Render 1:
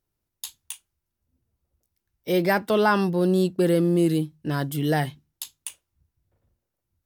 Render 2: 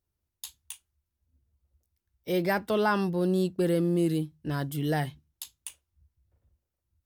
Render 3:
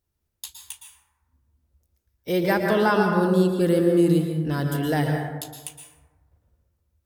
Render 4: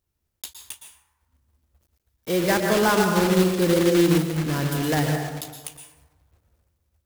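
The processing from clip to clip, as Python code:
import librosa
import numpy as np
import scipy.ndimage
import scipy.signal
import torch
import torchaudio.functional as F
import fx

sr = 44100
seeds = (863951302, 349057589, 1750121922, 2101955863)

y1 = fx.peak_eq(x, sr, hz=68.0, db=13.0, octaves=0.73)
y1 = y1 * 10.0 ** (-5.5 / 20.0)
y2 = fx.rev_plate(y1, sr, seeds[0], rt60_s=1.3, hf_ratio=0.35, predelay_ms=105, drr_db=2.0)
y2 = y2 * 10.0 ** (4.0 / 20.0)
y3 = fx.block_float(y2, sr, bits=3)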